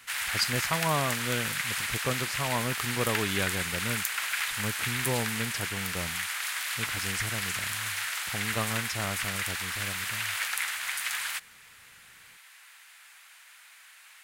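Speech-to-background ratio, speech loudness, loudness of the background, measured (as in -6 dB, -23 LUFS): -4.0 dB, -34.0 LUFS, -30.0 LUFS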